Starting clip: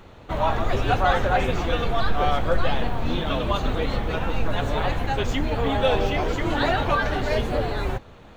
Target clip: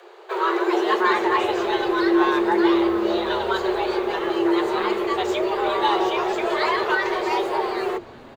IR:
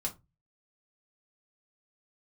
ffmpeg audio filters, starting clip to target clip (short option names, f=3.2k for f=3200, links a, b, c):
-filter_complex "[0:a]afreqshift=340,asplit=5[a][b][c][d][e];[b]adelay=379,afreqshift=-130,volume=-23.5dB[f];[c]adelay=758,afreqshift=-260,volume=-27.7dB[g];[d]adelay=1137,afreqshift=-390,volume=-31.8dB[h];[e]adelay=1516,afreqshift=-520,volume=-36dB[i];[a][f][g][h][i]amix=inputs=5:normalize=0"